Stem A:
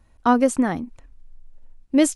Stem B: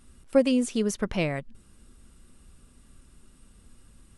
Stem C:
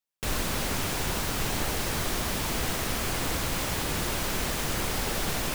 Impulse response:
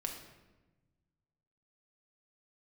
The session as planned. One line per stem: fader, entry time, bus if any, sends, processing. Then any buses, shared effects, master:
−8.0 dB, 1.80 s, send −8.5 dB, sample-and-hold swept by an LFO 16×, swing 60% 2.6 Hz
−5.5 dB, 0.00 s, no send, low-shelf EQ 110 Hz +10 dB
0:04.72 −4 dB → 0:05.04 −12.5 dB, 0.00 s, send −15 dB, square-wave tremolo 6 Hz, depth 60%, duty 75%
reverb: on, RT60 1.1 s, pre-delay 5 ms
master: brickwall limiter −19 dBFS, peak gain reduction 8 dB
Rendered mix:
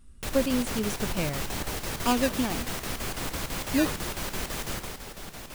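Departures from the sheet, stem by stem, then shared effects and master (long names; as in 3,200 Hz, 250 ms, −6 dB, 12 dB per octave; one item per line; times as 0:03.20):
stem A: send off
master: missing brickwall limiter −19 dBFS, peak gain reduction 8 dB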